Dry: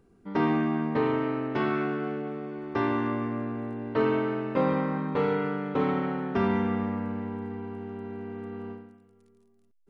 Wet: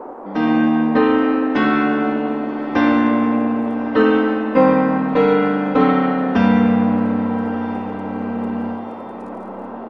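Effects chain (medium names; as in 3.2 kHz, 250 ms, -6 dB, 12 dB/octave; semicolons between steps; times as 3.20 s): comb 3.9 ms, depth 97%; level rider gain up to 10 dB; band noise 250–990 Hz -33 dBFS; on a send: echo that smears into a reverb 1215 ms, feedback 58%, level -16 dB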